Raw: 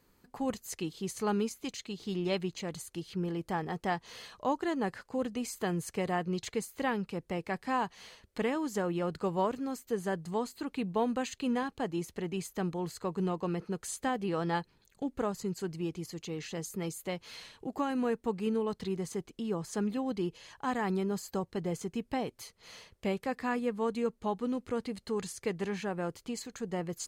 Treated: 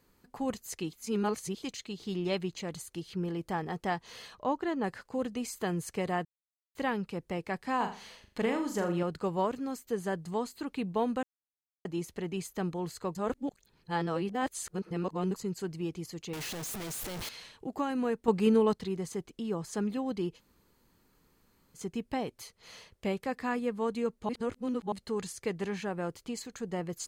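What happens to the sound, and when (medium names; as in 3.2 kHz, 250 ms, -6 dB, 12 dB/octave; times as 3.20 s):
0.93–1.63 s: reverse
4.35–4.84 s: peaking EQ 9.4 kHz -9.5 dB 1.7 oct
6.25–6.75 s: mute
7.76–9.03 s: flutter echo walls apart 6.9 m, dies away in 0.37 s
11.23–11.85 s: mute
13.15–15.36 s: reverse
16.33–17.29 s: one-bit comparator
18.28–18.73 s: gain +7 dB
20.38–21.77 s: room tone, crossfade 0.06 s
24.29–24.92 s: reverse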